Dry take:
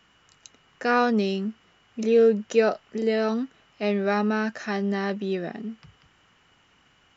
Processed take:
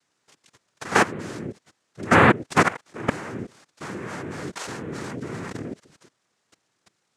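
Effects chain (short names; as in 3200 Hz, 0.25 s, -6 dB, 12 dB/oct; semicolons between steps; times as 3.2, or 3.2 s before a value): level quantiser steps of 20 dB; noise vocoder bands 3; gain +6.5 dB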